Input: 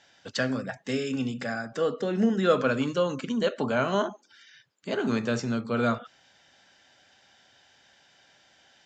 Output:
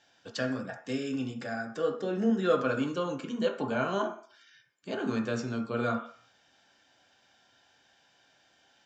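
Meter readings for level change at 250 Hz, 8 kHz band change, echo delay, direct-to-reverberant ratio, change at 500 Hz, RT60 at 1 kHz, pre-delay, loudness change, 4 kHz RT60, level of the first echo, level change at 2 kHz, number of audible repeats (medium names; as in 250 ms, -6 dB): -3.5 dB, no reading, no echo, 3.0 dB, -4.0 dB, 0.55 s, 3 ms, -4.0 dB, 0.55 s, no echo, -4.5 dB, no echo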